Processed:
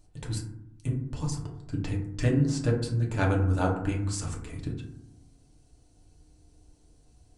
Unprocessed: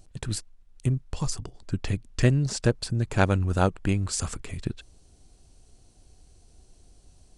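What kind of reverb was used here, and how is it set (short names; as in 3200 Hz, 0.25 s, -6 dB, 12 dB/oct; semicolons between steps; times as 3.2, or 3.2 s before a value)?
FDN reverb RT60 0.75 s, low-frequency decay 1.55×, high-frequency decay 0.35×, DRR -2 dB; gain -8 dB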